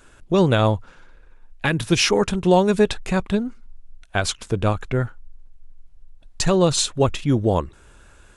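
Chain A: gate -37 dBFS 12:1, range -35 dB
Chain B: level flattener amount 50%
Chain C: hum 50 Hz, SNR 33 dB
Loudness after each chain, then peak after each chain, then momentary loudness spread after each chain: -20.5 LUFS, -18.0 LUFS, -20.5 LUFS; -5.5 dBFS, -2.5 dBFS, -5.5 dBFS; 8 LU, 11 LU, 8 LU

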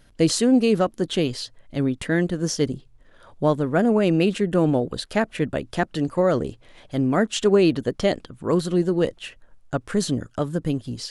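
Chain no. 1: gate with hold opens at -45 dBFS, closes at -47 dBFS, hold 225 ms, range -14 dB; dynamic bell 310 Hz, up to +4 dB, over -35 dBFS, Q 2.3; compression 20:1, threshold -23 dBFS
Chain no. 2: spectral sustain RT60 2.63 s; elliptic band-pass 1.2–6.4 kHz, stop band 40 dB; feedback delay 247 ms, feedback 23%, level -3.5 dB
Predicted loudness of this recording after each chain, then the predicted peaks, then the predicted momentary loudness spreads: -29.5 LUFS, -25.0 LUFS; -13.0 dBFS, -8.0 dBFS; 6 LU, 9 LU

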